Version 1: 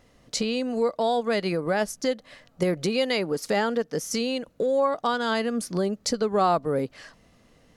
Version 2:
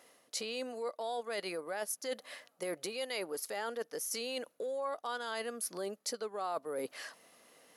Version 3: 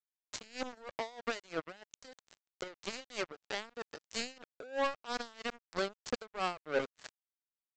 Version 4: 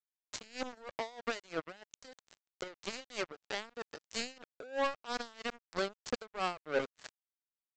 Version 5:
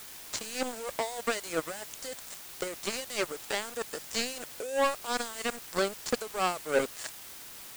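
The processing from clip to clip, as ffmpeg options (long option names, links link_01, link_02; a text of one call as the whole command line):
ffmpeg -i in.wav -af "highpass=460,equalizer=frequency=11000:width=2.3:gain=15,areverse,acompressor=threshold=-37dB:ratio=4,areverse" out.wav
ffmpeg -i in.wav -af "alimiter=level_in=8dB:limit=-24dB:level=0:latency=1:release=71,volume=-8dB,aresample=16000,acrusher=bits=5:mix=0:aa=0.5,aresample=44100,aeval=exprs='val(0)*pow(10,-23*(0.5-0.5*cos(2*PI*3.1*n/s))/20)':channel_layout=same,volume=8.5dB" out.wav
ffmpeg -i in.wav -af anull out.wav
ffmpeg -i in.wav -af "aeval=exprs='val(0)+0.5*0.0112*sgn(val(0))':channel_layout=same,volume=5dB" out.wav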